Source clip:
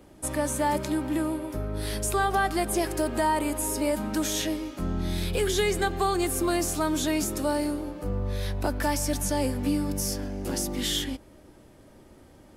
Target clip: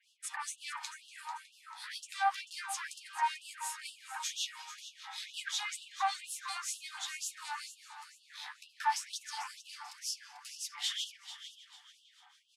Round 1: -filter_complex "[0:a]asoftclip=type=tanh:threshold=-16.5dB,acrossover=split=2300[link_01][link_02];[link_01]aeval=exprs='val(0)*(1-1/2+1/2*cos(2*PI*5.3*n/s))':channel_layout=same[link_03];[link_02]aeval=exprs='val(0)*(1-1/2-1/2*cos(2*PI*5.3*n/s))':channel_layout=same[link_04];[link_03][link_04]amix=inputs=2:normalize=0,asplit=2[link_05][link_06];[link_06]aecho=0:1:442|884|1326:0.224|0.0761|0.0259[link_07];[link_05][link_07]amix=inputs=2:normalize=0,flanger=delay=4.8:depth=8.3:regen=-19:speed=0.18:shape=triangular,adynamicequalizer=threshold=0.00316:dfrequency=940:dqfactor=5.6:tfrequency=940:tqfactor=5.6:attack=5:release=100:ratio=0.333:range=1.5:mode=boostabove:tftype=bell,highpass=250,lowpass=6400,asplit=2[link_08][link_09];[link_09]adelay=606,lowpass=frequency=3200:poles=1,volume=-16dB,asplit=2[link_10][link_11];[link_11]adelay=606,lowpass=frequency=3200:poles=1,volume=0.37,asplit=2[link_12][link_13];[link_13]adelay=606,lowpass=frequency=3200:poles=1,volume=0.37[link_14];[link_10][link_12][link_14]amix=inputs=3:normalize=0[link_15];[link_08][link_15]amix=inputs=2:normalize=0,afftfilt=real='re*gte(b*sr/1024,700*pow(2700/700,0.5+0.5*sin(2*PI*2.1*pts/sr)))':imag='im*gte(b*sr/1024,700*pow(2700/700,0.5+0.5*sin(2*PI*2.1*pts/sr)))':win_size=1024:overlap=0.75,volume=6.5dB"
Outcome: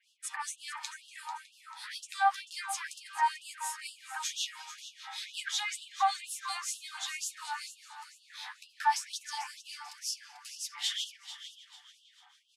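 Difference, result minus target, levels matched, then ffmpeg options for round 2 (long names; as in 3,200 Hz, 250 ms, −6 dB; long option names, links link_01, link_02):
soft clipping: distortion −11 dB
-filter_complex "[0:a]asoftclip=type=tanh:threshold=-25.5dB,acrossover=split=2300[link_01][link_02];[link_01]aeval=exprs='val(0)*(1-1/2+1/2*cos(2*PI*5.3*n/s))':channel_layout=same[link_03];[link_02]aeval=exprs='val(0)*(1-1/2-1/2*cos(2*PI*5.3*n/s))':channel_layout=same[link_04];[link_03][link_04]amix=inputs=2:normalize=0,asplit=2[link_05][link_06];[link_06]aecho=0:1:442|884|1326:0.224|0.0761|0.0259[link_07];[link_05][link_07]amix=inputs=2:normalize=0,flanger=delay=4.8:depth=8.3:regen=-19:speed=0.18:shape=triangular,adynamicequalizer=threshold=0.00316:dfrequency=940:dqfactor=5.6:tfrequency=940:tqfactor=5.6:attack=5:release=100:ratio=0.333:range=1.5:mode=boostabove:tftype=bell,highpass=250,lowpass=6400,asplit=2[link_08][link_09];[link_09]adelay=606,lowpass=frequency=3200:poles=1,volume=-16dB,asplit=2[link_10][link_11];[link_11]adelay=606,lowpass=frequency=3200:poles=1,volume=0.37,asplit=2[link_12][link_13];[link_13]adelay=606,lowpass=frequency=3200:poles=1,volume=0.37[link_14];[link_10][link_12][link_14]amix=inputs=3:normalize=0[link_15];[link_08][link_15]amix=inputs=2:normalize=0,afftfilt=real='re*gte(b*sr/1024,700*pow(2700/700,0.5+0.5*sin(2*PI*2.1*pts/sr)))':imag='im*gte(b*sr/1024,700*pow(2700/700,0.5+0.5*sin(2*PI*2.1*pts/sr)))':win_size=1024:overlap=0.75,volume=6.5dB"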